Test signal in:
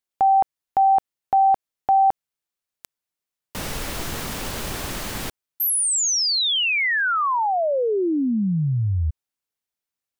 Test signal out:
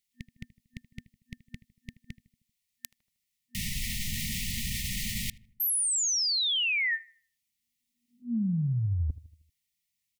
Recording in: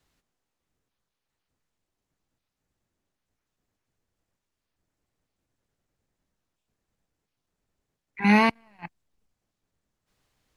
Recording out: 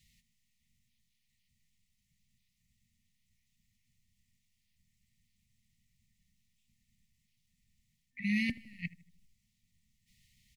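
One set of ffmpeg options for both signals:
-filter_complex "[0:a]afftfilt=real='re*(1-between(b*sr/4096,240,1800))':imag='im*(1-between(b*sr/4096,240,1800))':win_size=4096:overlap=0.75,areverse,acompressor=threshold=-32dB:ratio=10:attack=1:release=311:knee=6:detection=peak,areverse,asplit=2[a][b];[b]adelay=78,lowpass=f=1.6k:p=1,volume=-17.5dB,asplit=2[c][d];[d]adelay=78,lowpass=f=1.6k:p=1,volume=0.53,asplit=2[e][f];[f]adelay=78,lowpass=f=1.6k:p=1,volume=0.53,asplit=2[g][h];[h]adelay=78,lowpass=f=1.6k:p=1,volume=0.53,asplit=2[i][j];[j]adelay=78,lowpass=f=1.6k:p=1,volume=0.53[k];[a][c][e][g][i][k]amix=inputs=6:normalize=0,volume=6dB"

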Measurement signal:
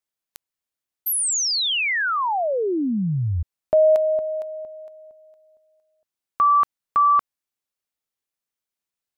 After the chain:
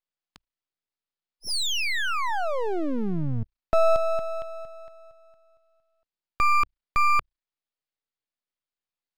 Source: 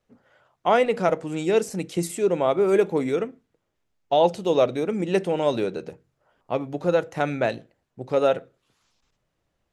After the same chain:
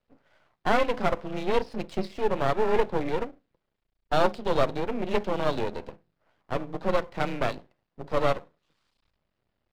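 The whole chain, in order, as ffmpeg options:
-af "aresample=11025,aresample=44100,afreqshift=29,aeval=exprs='max(val(0),0)':c=same"

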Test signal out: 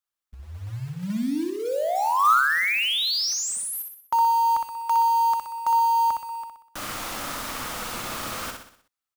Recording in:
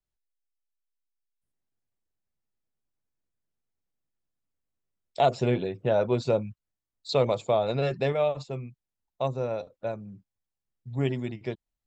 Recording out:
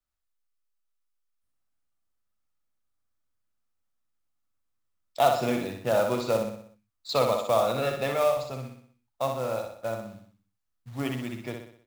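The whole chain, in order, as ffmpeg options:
-filter_complex "[0:a]acrossover=split=5100[a][b];[b]acompressor=threshold=-32dB:ratio=4:attack=1:release=60[c];[a][c]amix=inputs=2:normalize=0,equalizer=f=160:t=o:w=0.33:g=-11,equalizer=f=400:t=o:w=0.33:g=-9,equalizer=f=1.25k:t=o:w=0.33:g=9,acrossover=split=130|2600[d][e][f];[d]acompressor=threshold=-46dB:ratio=20[g];[g][e][f]amix=inputs=3:normalize=0,acrusher=bits=4:mode=log:mix=0:aa=0.000001,aecho=1:1:62|124|186|248|310|372:0.562|0.276|0.135|0.0662|0.0324|0.0159"

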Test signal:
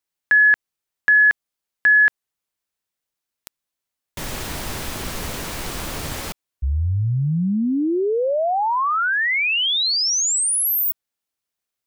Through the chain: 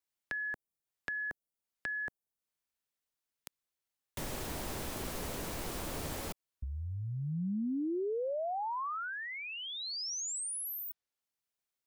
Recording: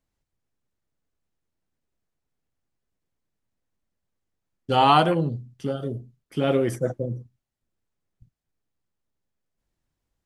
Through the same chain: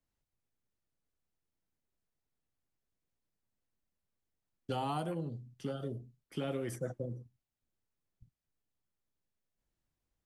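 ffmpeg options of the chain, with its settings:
-filter_complex "[0:a]acrossover=split=250|830|7300[a][b][c][d];[a]acompressor=threshold=-34dB:ratio=4[e];[b]acompressor=threshold=-33dB:ratio=4[f];[c]acompressor=threshold=-40dB:ratio=4[g];[d]acompressor=threshold=-38dB:ratio=4[h];[e][f][g][h]amix=inputs=4:normalize=0,volume=-6.5dB"

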